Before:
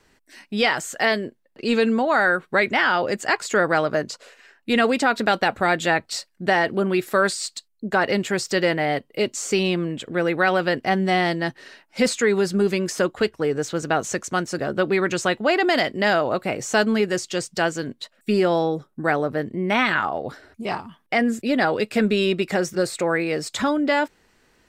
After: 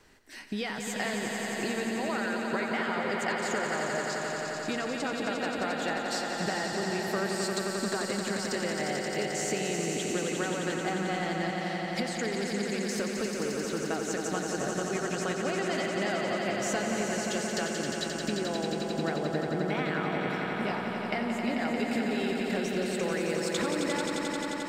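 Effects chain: compressor 16:1, threshold -31 dBFS, peak gain reduction 18 dB; on a send: swelling echo 88 ms, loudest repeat 5, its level -6.5 dB

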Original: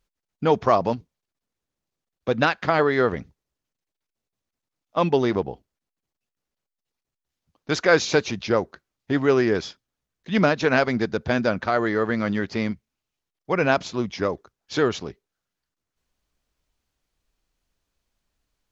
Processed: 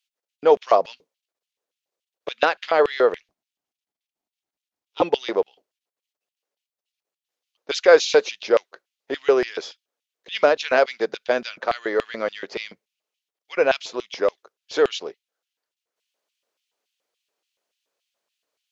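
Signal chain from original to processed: LFO high-pass square 3.5 Hz 490–2900 Hz; 3.16–5.02 ring modulator 210 Hz; gain -1 dB

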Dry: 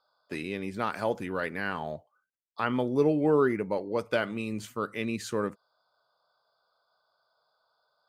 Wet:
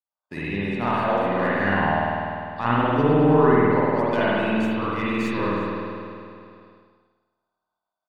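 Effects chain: tracing distortion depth 0.04 ms; high shelf 5400 Hz -9.5 dB; comb 1.1 ms, depth 43%; spring tank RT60 2.6 s, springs 50 ms, chirp 60 ms, DRR -10 dB; expander -49 dBFS; echo 0.362 s -20 dB

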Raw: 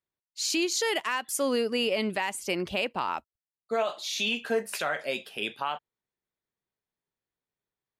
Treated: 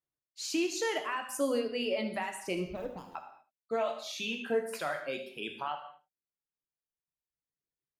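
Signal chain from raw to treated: 2.56–3.15 median filter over 41 samples; reverb removal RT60 1.9 s; tilt shelf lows +3.5 dB, about 1400 Hz; on a send: echo 75 ms -14.5 dB; on the sum: non-linear reverb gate 0.26 s falling, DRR 4.5 dB; gain -6 dB

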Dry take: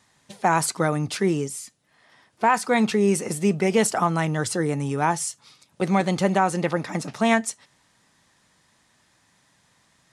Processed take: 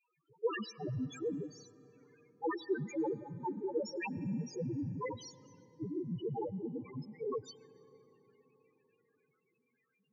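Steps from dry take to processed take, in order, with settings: bell 210 Hz -14.5 dB 0.52 oct; noise vocoder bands 4; bell 690 Hz -8.5 dB 0.41 oct; loudest bins only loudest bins 1; on a send: reverb RT60 4.8 s, pre-delay 88 ms, DRR 19 dB; on the sum: gain +2.5 dB

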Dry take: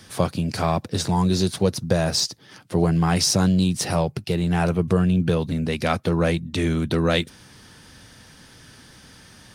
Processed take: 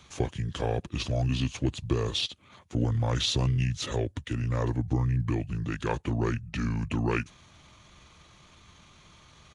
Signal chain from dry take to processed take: pitch shift -6.5 st; gain -7 dB

